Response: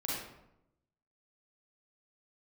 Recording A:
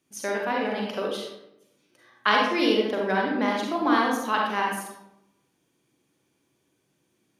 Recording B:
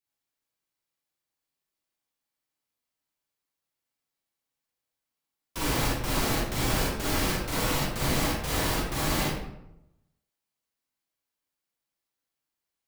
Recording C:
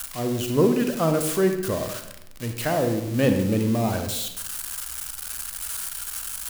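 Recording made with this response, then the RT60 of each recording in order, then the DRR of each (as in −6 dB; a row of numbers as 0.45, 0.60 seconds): B; 0.85, 0.85, 0.85 seconds; −2.0, −6.0, 6.0 decibels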